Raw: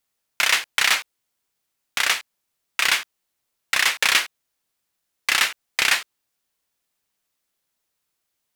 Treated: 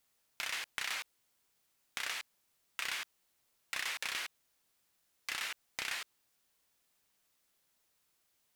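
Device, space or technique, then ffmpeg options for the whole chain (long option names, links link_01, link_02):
de-esser from a sidechain: -filter_complex "[0:a]asplit=2[link_01][link_02];[link_02]highpass=4100,apad=whole_len=377228[link_03];[link_01][link_03]sidechaincompress=threshold=-37dB:ratio=20:attack=0.82:release=84,volume=1dB"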